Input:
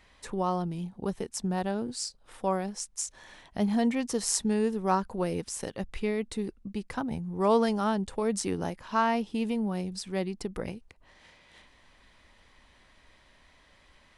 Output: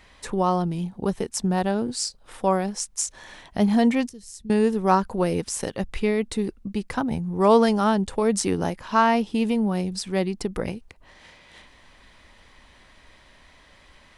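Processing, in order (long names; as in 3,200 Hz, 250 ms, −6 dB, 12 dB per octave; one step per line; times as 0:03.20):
0:04.09–0:04.50: guitar amp tone stack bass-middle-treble 10-0-1
level +7 dB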